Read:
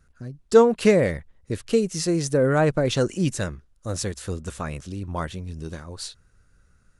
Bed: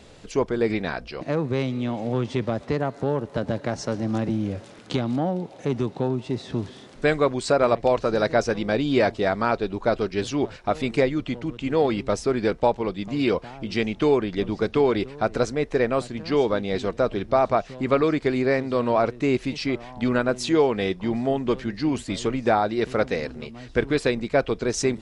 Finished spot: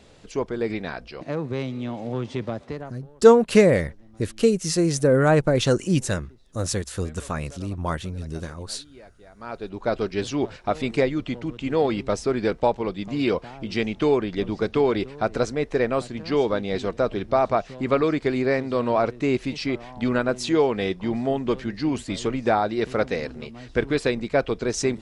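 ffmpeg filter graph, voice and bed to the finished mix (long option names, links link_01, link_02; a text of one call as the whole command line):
ffmpeg -i stem1.wav -i stem2.wav -filter_complex "[0:a]adelay=2700,volume=2dB[link_01];[1:a]volume=23.5dB,afade=type=out:start_time=2.5:duration=0.55:silence=0.0630957,afade=type=in:start_time=9.34:duration=0.69:silence=0.0446684[link_02];[link_01][link_02]amix=inputs=2:normalize=0" out.wav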